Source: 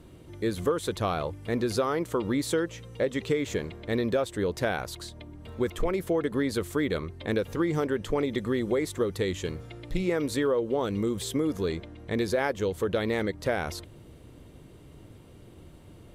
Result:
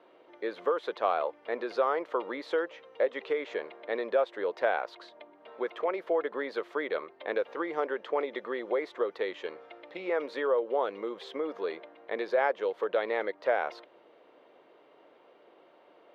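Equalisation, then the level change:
four-pole ladder high-pass 450 Hz, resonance 25%
high-frequency loss of the air 300 metres
high-shelf EQ 4,200 Hz −5.5 dB
+8.0 dB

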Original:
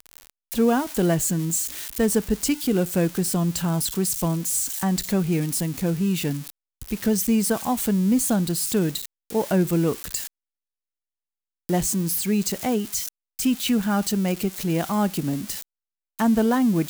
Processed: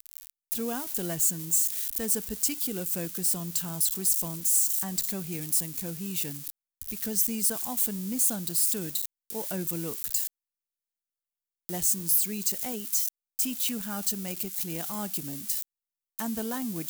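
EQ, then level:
first-order pre-emphasis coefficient 0.8
0.0 dB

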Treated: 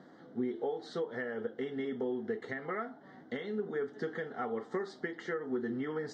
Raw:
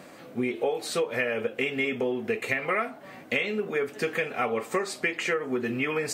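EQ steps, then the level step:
Butterworth band-reject 2,500 Hz, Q 1.8
loudspeaker in its box 110–5,200 Hz, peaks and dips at 120 Hz −4 dB, 580 Hz −10 dB, 1,100 Hz −7 dB, 4,500 Hz −4 dB
high-shelf EQ 2,200 Hz −8.5 dB
−4.5 dB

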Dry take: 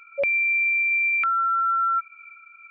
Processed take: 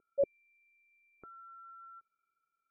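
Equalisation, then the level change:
transistor ladder low-pass 490 Hz, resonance 45%
+7.0 dB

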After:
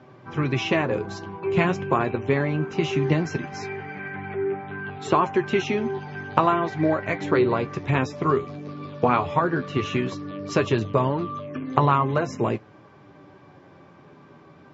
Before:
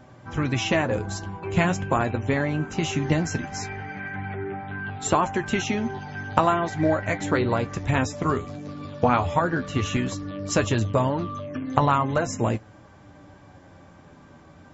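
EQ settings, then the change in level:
loudspeaker in its box 130–5,400 Hz, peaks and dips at 140 Hz +7 dB, 390 Hz +10 dB, 1,100 Hz +5 dB, 2,400 Hz +4 dB
−2.0 dB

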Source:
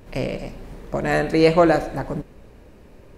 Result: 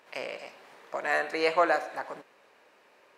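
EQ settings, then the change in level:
dynamic equaliser 3,500 Hz, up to −4 dB, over −37 dBFS, Q 0.95
high-pass filter 930 Hz 12 dB per octave
high-shelf EQ 6,300 Hz −11.5 dB
0.0 dB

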